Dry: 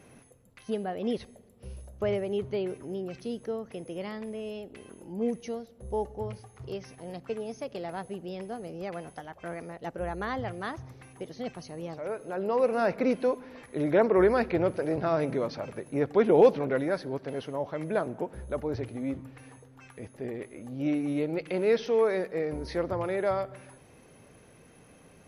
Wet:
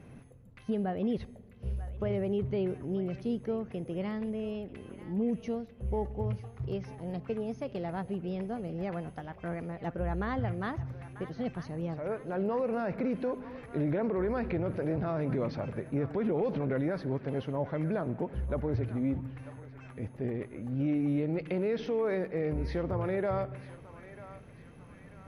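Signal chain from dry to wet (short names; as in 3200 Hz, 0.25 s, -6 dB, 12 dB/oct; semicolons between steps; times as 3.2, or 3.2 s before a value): tone controls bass +10 dB, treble -10 dB; limiter -21.5 dBFS, peak gain reduction 13.5 dB; narrowing echo 0.943 s, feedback 55%, band-pass 1800 Hz, level -12 dB; gain -1.5 dB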